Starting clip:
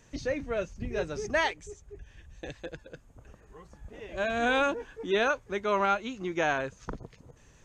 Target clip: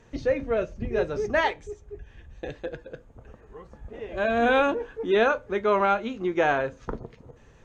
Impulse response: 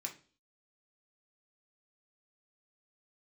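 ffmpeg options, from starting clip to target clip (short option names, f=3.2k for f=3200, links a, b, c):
-filter_complex "[0:a]lowpass=f=1.3k:p=1,asplit=2[a][b];[1:a]atrim=start_sample=2205,asetrate=70560,aresample=44100[c];[b][c]afir=irnorm=-1:irlink=0,volume=0.5dB[d];[a][d]amix=inputs=2:normalize=0,volume=5dB"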